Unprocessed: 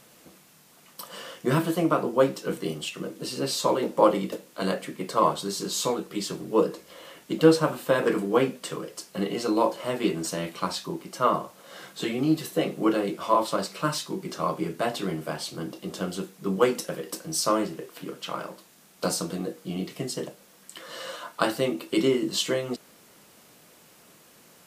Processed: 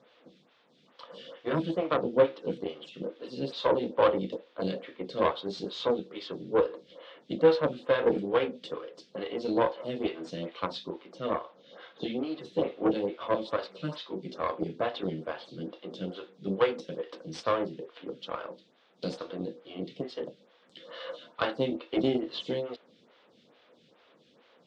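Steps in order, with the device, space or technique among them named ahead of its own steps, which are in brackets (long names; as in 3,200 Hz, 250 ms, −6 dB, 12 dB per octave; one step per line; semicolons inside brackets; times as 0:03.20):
0:11.18–0:12.23: Chebyshev low-pass filter 7,000 Hz, order 10
vibe pedal into a guitar amplifier (phaser with staggered stages 2.3 Hz; tube saturation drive 18 dB, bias 0.75; loudspeaker in its box 86–4,400 Hz, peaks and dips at 250 Hz +4 dB, 500 Hz +7 dB, 3,500 Hz +8 dB)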